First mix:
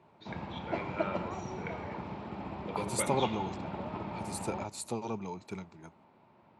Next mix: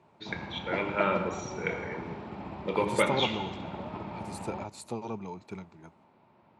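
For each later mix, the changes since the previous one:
first voice +10.5 dB; second voice: add treble shelf 5.4 kHz -8.5 dB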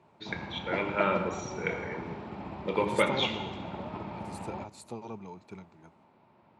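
second voice -4.5 dB

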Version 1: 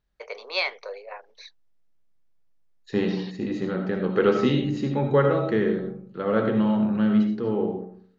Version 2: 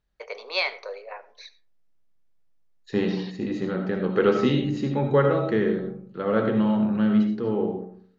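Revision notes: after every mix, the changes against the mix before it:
first voice: send on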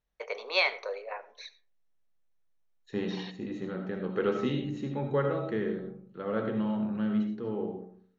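second voice -8.5 dB; master: add band-stop 4.8 kHz, Q 5.1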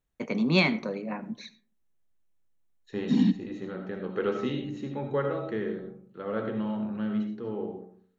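first voice: remove Chebyshev band-pass 440–6100 Hz, order 5; master: add peaking EQ 160 Hz -5 dB 0.4 oct

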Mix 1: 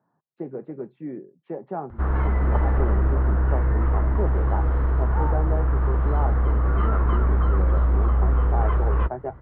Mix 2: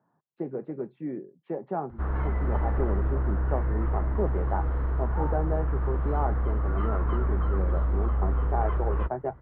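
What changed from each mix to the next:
background -6.0 dB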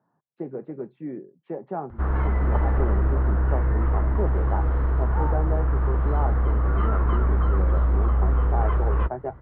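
background +5.0 dB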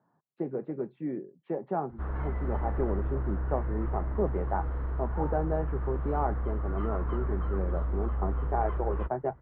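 background -10.0 dB

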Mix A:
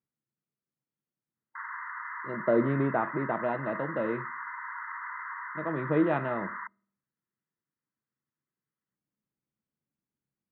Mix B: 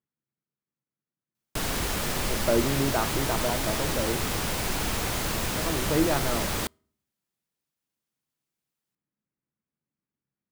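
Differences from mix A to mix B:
background: remove brick-wall FIR band-pass 910–2100 Hz; master: remove distance through air 160 m

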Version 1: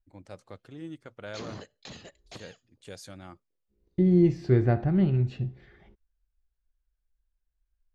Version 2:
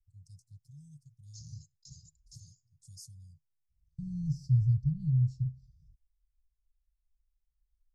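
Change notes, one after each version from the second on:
master: add Chebyshev band-stop 150–5100 Hz, order 5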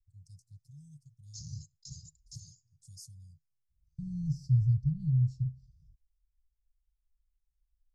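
background +5.5 dB

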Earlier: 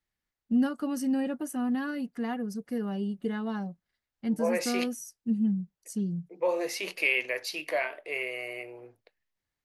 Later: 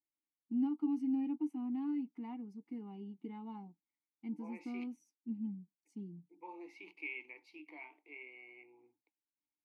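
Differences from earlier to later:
second voice -5.5 dB; master: add vowel filter u

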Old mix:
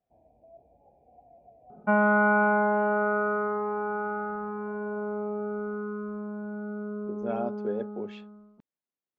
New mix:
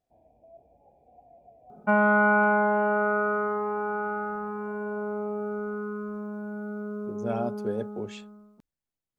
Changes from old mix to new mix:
speech: remove high-pass 230 Hz 12 dB/octave; master: remove distance through air 250 m

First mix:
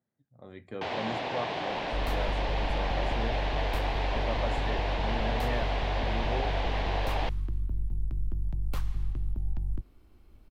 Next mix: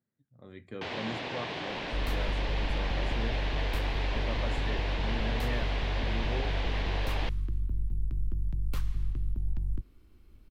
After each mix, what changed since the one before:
master: add peaking EQ 740 Hz -8 dB 0.98 oct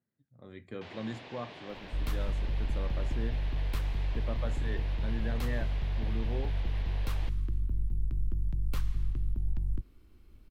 first sound -11.5 dB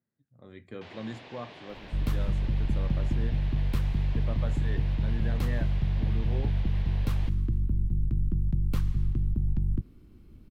second sound: add peaking EQ 170 Hz +13 dB 2.3 oct

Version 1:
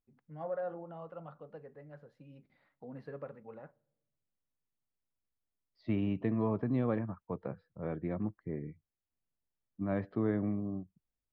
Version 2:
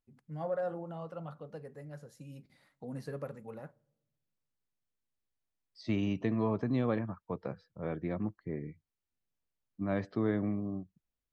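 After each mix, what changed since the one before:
first voice: add bass shelf 230 Hz +10 dB; master: remove distance through air 410 m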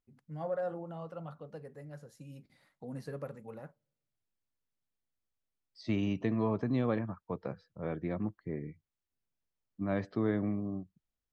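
first voice: send -10.5 dB

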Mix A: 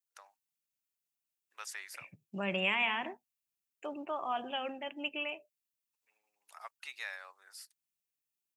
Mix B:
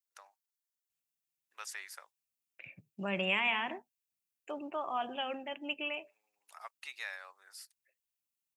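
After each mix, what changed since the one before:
second voice: entry +0.65 s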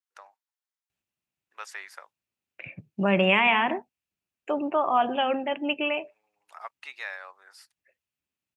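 first voice -4.5 dB; master: remove pre-emphasis filter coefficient 0.8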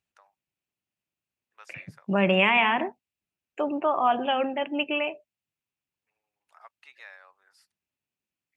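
first voice -10.5 dB; second voice: entry -0.90 s

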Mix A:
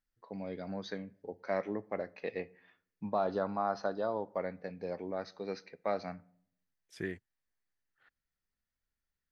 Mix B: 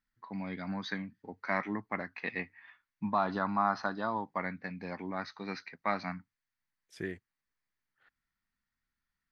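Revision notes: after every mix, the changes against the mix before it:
first voice: add ten-band graphic EQ 125 Hz +4 dB, 250 Hz +8 dB, 500 Hz -11 dB, 1 kHz +10 dB, 2 kHz +10 dB, 4 kHz +4 dB; reverb: off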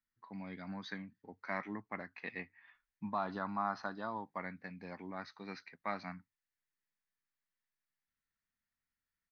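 first voice -7.0 dB; second voice: entry +2.75 s

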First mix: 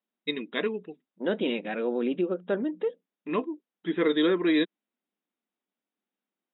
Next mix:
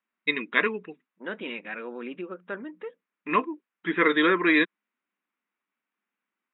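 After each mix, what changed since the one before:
second voice -9.5 dB; master: add high-order bell 1.6 kHz +11.5 dB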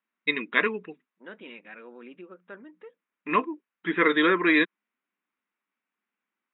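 second voice -9.0 dB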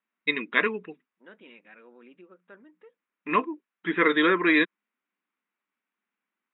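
second voice -6.5 dB

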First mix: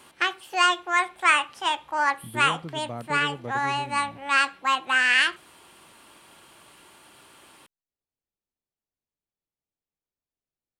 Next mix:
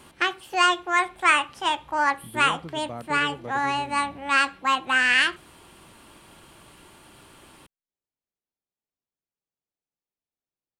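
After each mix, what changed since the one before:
background: remove high-pass 530 Hz 6 dB/octave; master: add bass shelf 95 Hz -9 dB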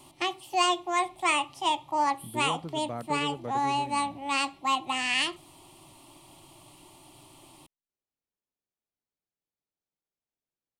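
background: add static phaser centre 310 Hz, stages 8

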